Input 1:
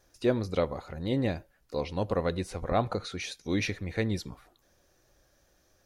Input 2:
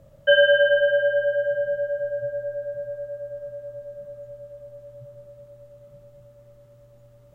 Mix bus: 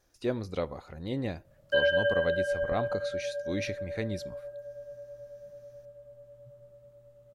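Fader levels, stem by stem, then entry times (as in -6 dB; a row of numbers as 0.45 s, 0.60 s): -4.5 dB, -9.0 dB; 0.00 s, 1.45 s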